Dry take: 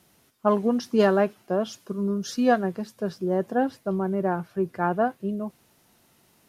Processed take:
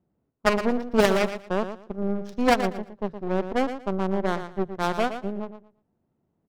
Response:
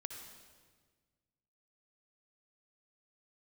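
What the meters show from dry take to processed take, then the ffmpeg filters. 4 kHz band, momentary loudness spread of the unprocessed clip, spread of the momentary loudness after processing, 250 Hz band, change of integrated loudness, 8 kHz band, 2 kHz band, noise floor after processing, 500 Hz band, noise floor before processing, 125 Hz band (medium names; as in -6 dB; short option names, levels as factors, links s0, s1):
+5.5 dB, 10 LU, 11 LU, -1.5 dB, -0.5 dB, no reading, +4.0 dB, -75 dBFS, -1.0 dB, -62 dBFS, -1.5 dB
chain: -af "highshelf=f=5600:g=8,adynamicsmooth=sensitivity=4.5:basefreq=570,aeval=exprs='0.398*(cos(1*acos(clip(val(0)/0.398,-1,1)))-cos(1*PI/2))+0.178*(cos(4*acos(clip(val(0)/0.398,-1,1)))-cos(4*PI/2))+0.141*(cos(6*acos(clip(val(0)/0.398,-1,1)))-cos(6*PI/2))+0.0316*(cos(7*acos(clip(val(0)/0.398,-1,1)))-cos(7*PI/2))':c=same,aecho=1:1:116|232|348:0.316|0.0664|0.0139"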